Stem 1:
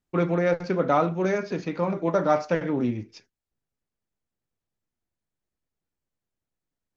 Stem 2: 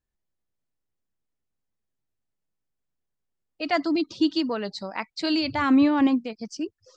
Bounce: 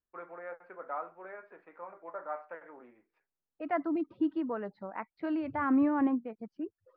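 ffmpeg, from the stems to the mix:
-filter_complex "[0:a]highpass=780,volume=-12dB[a];[1:a]volume=-6dB[b];[a][b]amix=inputs=2:normalize=0,lowpass=f=1.7k:w=0.5412,lowpass=f=1.7k:w=1.3066,lowshelf=f=170:g=-6.5"

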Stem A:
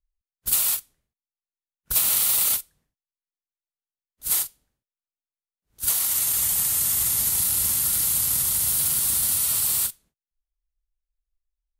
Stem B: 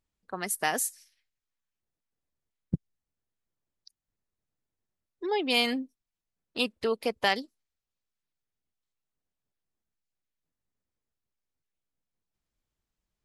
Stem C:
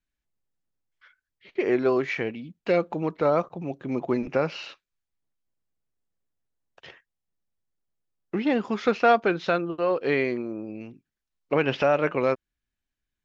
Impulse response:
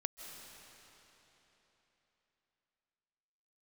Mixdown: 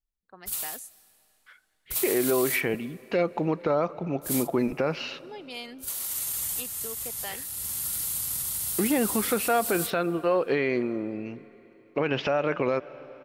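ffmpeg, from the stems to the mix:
-filter_complex "[0:a]volume=-9dB,asplit=2[a][b];[b]volume=-16.5dB[c];[1:a]volume=-14.5dB,asplit=3[d][e][f];[e]volume=-18dB[g];[2:a]adelay=450,volume=1.5dB,asplit=2[h][i];[i]volume=-16dB[j];[f]apad=whole_len=520243[k];[a][k]sidechaincompress=threshold=-44dB:ratio=8:attack=38:release=634[l];[3:a]atrim=start_sample=2205[m];[c][g][j]amix=inputs=3:normalize=0[n];[n][m]afir=irnorm=-1:irlink=0[o];[l][d][h][o]amix=inputs=4:normalize=0,alimiter=limit=-14.5dB:level=0:latency=1:release=75"

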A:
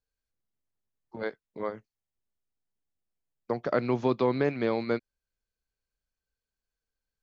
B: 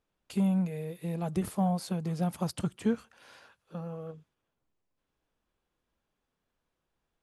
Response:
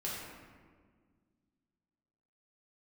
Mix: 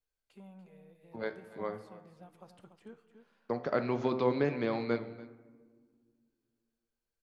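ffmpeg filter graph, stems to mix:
-filter_complex "[0:a]bandreject=f=64.48:t=h:w=4,bandreject=f=128.96:t=h:w=4,bandreject=f=193.44:t=h:w=4,bandreject=f=257.92:t=h:w=4,bandreject=f=322.4:t=h:w=4,bandreject=f=386.88:t=h:w=4,bandreject=f=451.36:t=h:w=4,bandreject=f=515.84:t=h:w=4,bandreject=f=580.32:t=h:w=4,bandreject=f=644.8:t=h:w=4,bandreject=f=709.28:t=h:w=4,bandreject=f=773.76:t=h:w=4,bandreject=f=838.24:t=h:w=4,bandreject=f=902.72:t=h:w=4,bandreject=f=967.2:t=h:w=4,bandreject=f=1.03168k:t=h:w=4,bandreject=f=1.09616k:t=h:w=4,bandreject=f=1.16064k:t=h:w=4,bandreject=f=1.22512k:t=h:w=4,bandreject=f=1.2896k:t=h:w=4,bandreject=f=1.35408k:t=h:w=4,bandreject=f=1.41856k:t=h:w=4,bandreject=f=1.48304k:t=h:w=4,bandreject=f=1.54752k:t=h:w=4,bandreject=f=1.612k:t=h:w=4,bandreject=f=1.67648k:t=h:w=4,bandreject=f=1.74096k:t=h:w=4,bandreject=f=1.80544k:t=h:w=4,bandreject=f=1.86992k:t=h:w=4,bandreject=f=1.9344k:t=h:w=4,volume=0.5dB,asplit=3[a][b][c];[b]volume=-15.5dB[d];[c]volume=-18dB[e];[1:a]bass=f=250:g=-12,treble=f=4k:g=-10,volume=-14dB,asplit=3[f][g][h];[g]volume=-17dB[i];[h]volume=-9dB[j];[2:a]atrim=start_sample=2205[k];[d][i]amix=inputs=2:normalize=0[l];[l][k]afir=irnorm=-1:irlink=0[m];[e][j]amix=inputs=2:normalize=0,aecho=0:1:289:1[n];[a][f][m][n]amix=inputs=4:normalize=0,flanger=delay=6.2:depth=7.2:regen=88:speed=0.44:shape=triangular"

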